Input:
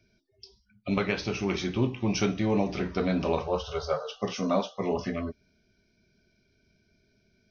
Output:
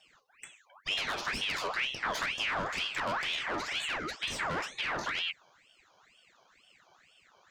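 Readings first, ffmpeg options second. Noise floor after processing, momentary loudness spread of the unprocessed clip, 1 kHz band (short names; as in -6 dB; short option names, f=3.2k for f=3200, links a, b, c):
-66 dBFS, 6 LU, -0.5 dB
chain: -filter_complex "[0:a]acrossover=split=430|3800[a][b][c];[a]acompressor=threshold=-35dB:ratio=4[d];[b]acompressor=threshold=-31dB:ratio=4[e];[c]acompressor=threshold=-48dB:ratio=4[f];[d][e][f]amix=inputs=3:normalize=0,acrossover=split=170[g][h];[h]asoftclip=type=tanh:threshold=-36.5dB[i];[g][i]amix=inputs=2:normalize=0,aeval=exprs='val(0)*sin(2*PI*1900*n/s+1900*0.6/2.1*sin(2*PI*2.1*n/s))':c=same,volume=7dB"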